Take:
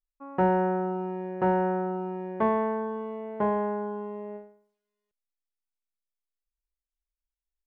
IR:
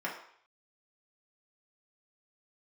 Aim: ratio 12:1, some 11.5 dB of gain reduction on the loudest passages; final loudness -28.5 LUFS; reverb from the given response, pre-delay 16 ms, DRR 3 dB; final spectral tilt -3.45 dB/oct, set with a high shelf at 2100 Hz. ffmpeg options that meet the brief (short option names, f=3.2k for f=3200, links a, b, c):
-filter_complex "[0:a]highshelf=f=2.1k:g=5,acompressor=threshold=-31dB:ratio=12,asplit=2[a][b];[1:a]atrim=start_sample=2205,adelay=16[c];[b][c]afir=irnorm=-1:irlink=0,volume=-8.5dB[d];[a][d]amix=inputs=2:normalize=0,volume=6.5dB"